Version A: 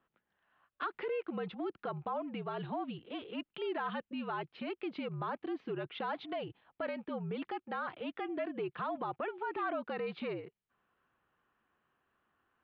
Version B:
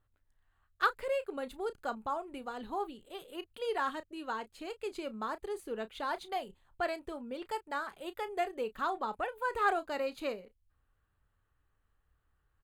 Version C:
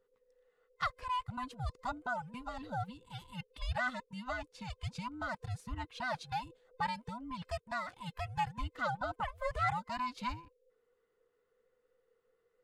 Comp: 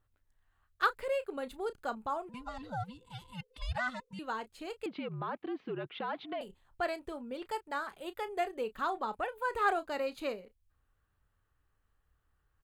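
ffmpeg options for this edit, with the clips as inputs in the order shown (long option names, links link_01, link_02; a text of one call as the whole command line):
ffmpeg -i take0.wav -i take1.wav -i take2.wav -filter_complex "[1:a]asplit=3[link_01][link_02][link_03];[link_01]atrim=end=2.292[link_04];[2:a]atrim=start=2.288:end=4.192[link_05];[link_02]atrim=start=4.188:end=4.862[link_06];[0:a]atrim=start=4.858:end=6.412[link_07];[link_03]atrim=start=6.408[link_08];[link_04][link_05]acrossfade=duration=0.004:curve1=hsin:curve2=hsin[link_09];[link_09][link_06]acrossfade=duration=0.004:curve1=hsin:curve2=hsin[link_10];[link_10][link_07]acrossfade=duration=0.004:curve1=hsin:curve2=hsin[link_11];[link_11][link_08]acrossfade=duration=0.004:curve1=hsin:curve2=hsin" out.wav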